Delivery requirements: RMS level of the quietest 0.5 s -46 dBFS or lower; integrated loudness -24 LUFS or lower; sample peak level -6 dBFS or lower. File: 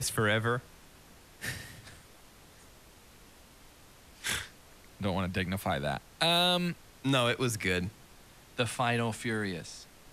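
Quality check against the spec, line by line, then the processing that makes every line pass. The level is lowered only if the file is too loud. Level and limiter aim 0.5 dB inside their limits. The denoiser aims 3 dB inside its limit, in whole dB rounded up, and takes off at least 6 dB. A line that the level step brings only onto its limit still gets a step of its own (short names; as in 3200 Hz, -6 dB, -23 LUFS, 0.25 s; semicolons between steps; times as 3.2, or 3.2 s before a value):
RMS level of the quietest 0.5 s -56 dBFS: OK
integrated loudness -31.0 LUFS: OK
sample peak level -12.5 dBFS: OK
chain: none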